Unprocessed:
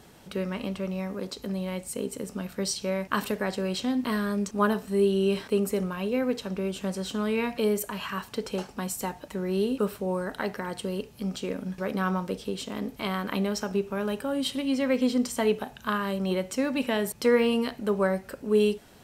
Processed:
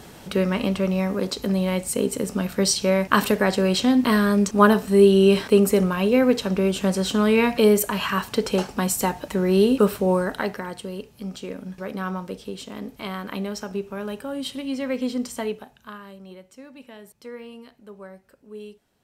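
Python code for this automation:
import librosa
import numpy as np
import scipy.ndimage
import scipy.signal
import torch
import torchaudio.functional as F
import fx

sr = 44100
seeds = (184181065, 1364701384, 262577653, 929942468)

y = fx.gain(x, sr, db=fx.line((10.13, 9.0), (10.85, -1.5), (15.38, -1.5), (15.71, -9.0), (16.44, -16.5)))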